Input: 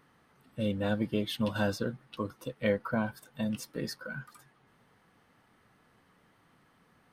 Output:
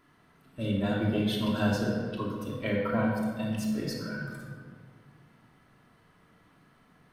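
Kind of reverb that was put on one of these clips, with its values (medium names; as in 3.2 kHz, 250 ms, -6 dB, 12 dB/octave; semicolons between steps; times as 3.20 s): simulated room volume 2200 m³, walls mixed, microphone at 3 m; trim -2 dB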